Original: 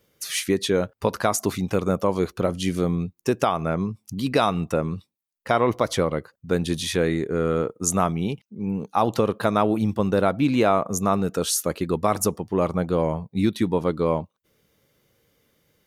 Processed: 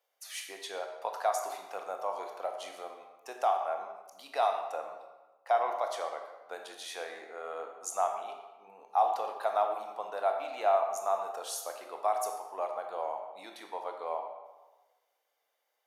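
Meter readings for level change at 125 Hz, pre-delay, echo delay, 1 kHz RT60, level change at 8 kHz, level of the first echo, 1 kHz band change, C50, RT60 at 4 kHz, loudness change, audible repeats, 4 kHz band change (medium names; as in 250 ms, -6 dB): under -40 dB, 19 ms, no echo, 1.2 s, -14.0 dB, no echo, -4.0 dB, 5.0 dB, 0.80 s, -10.0 dB, no echo, -13.5 dB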